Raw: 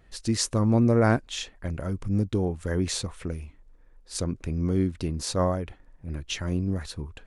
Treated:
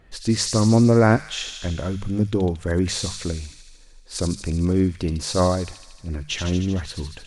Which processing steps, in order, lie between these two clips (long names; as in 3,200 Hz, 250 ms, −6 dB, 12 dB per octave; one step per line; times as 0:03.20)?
high-shelf EQ 8,200 Hz −8.5 dB
mains-hum notches 50/100/150/200 Hz
on a send: delay with a high-pass on its return 76 ms, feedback 74%, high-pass 3,100 Hz, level −4 dB
on the sum: level +5.5 dB